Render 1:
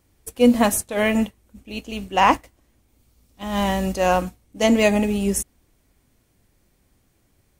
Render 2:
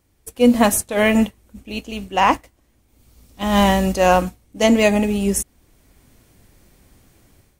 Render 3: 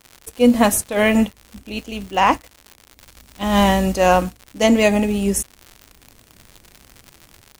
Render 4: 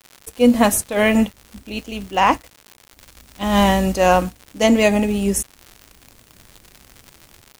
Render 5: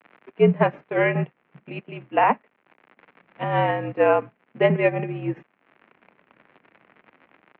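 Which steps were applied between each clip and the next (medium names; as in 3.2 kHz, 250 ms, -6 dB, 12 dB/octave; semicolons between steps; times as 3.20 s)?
level rider gain up to 11.5 dB; trim -1 dB
crackle 130 per s -28 dBFS
bit crusher 9-bit
transient shaper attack +5 dB, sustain -7 dB; mistuned SSB -63 Hz 250–2500 Hz; trim -4.5 dB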